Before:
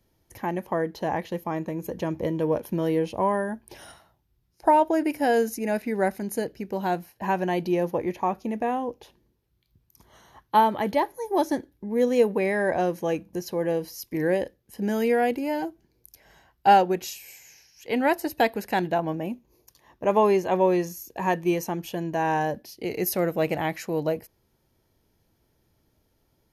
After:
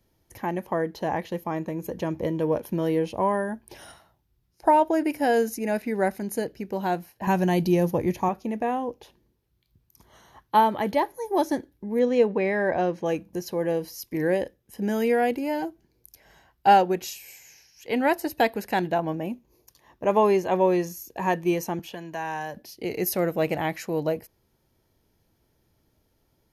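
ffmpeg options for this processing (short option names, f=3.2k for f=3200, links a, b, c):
-filter_complex "[0:a]asettb=1/sr,asplit=3[a][b][c];[a]atrim=end=7.274[d];[b]atrim=start=7.27:end=8.29,asetpts=PTS-STARTPTS,afade=t=in:d=0.004:c=qsin,afade=t=out:st=1.016:d=0.004:c=qsin,bass=f=250:g=10,treble=f=4k:g=9[e];[c]atrim=start=8.286[f];[d][e]acrossfade=d=0.004:c1=hsin:c2=qsin[g];[g][f]acrossfade=d=0.004:c1=qsin:c2=hsin,asettb=1/sr,asplit=3[h][i][j];[h]atrim=end=11.994[k];[i]atrim=start=11.99:end=13.06,asetpts=PTS-STARTPTS,afade=t=in:d=0.004:c=qsin,afade=t=out:st=1.066:d=0.004:c=qsin,lowpass=4.7k[l];[j]atrim=start=13.056[m];[k][l]acrossfade=d=0.004:c1=hsin:c2=qsin[n];[n][m]acrossfade=d=0.004:c1=qsin:c2=hsin,asettb=1/sr,asplit=3[o][p][q];[o]atrim=end=14.444[r];[p]atrim=start=14.44:end=15.08,asetpts=PTS-STARTPTS,afade=t=in:d=0.004:c=qsin,afade=t=out:st=0.636:d=0.004:c=qsin,bandreject=f=4.4k:w=12[s];[q]atrim=start=15.076[t];[r][s]acrossfade=d=0.004:c1=hsin:c2=qsin[u];[u][t]acrossfade=d=0.004:c1=qsin:c2=hsin,asettb=1/sr,asplit=3[v][w][x];[v]atrim=end=21.794[y];[w]atrim=start=21.79:end=22.57,asetpts=PTS-STARTPTS,afade=t=in:d=0.004:c=qsin,afade=t=out:st=0.776:d=0.004:c=qsin,acrossover=split=190|830|5200[z][aa][ab][ac];[z]acompressor=threshold=-50dB:ratio=3[ad];[aa]acompressor=threshold=-42dB:ratio=3[ae];[ab]acompressor=threshold=-31dB:ratio=3[af];[ac]acompressor=threshold=-53dB:ratio=3[ag];[ad][ae][af][ag]amix=inputs=4:normalize=0[ah];[x]atrim=start=22.566[ai];[y][ah]acrossfade=d=0.004:c1=hsin:c2=qsin[aj];[aj][ai]acrossfade=d=0.004:c1=qsin:c2=hsin"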